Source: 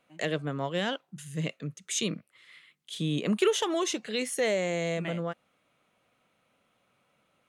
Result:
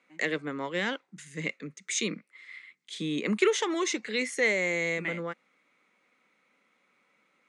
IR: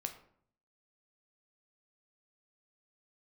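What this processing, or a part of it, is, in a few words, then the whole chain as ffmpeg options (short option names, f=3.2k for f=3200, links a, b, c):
television speaker: -af "highpass=f=200:w=0.5412,highpass=f=200:w=1.3066,equalizer=f=660:t=q:w=4:g=-10,equalizer=f=2.1k:t=q:w=4:g=10,equalizer=f=3k:t=q:w=4:g=-6,lowpass=f=8.2k:w=0.5412,lowpass=f=8.2k:w=1.3066,volume=1dB"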